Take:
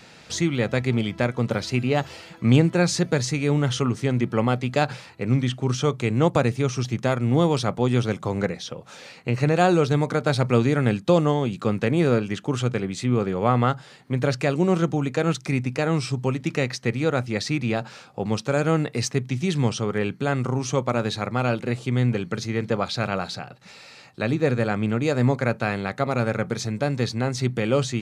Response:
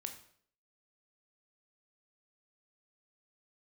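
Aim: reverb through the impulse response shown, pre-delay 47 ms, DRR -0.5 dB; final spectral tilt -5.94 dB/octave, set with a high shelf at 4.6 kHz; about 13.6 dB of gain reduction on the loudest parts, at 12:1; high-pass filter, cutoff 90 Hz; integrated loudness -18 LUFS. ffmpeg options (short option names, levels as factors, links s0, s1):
-filter_complex "[0:a]highpass=90,highshelf=f=4600:g=-6.5,acompressor=threshold=0.0501:ratio=12,asplit=2[s0][s1];[1:a]atrim=start_sample=2205,adelay=47[s2];[s1][s2]afir=irnorm=-1:irlink=0,volume=1.41[s3];[s0][s3]amix=inputs=2:normalize=0,volume=3.55"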